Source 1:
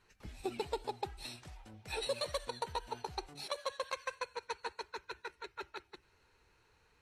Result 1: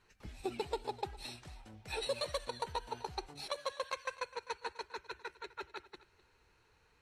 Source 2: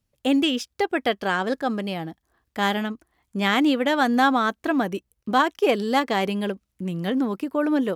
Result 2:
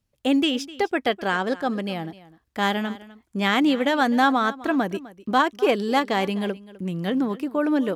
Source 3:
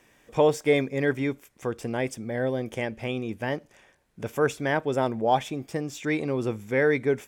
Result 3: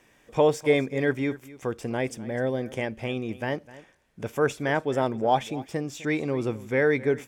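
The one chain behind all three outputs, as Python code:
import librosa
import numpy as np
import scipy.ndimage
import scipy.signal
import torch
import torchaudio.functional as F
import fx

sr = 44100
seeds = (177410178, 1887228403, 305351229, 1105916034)

p1 = fx.high_shelf(x, sr, hz=11000.0, db=-4.0)
y = p1 + fx.echo_single(p1, sr, ms=254, db=-18.5, dry=0)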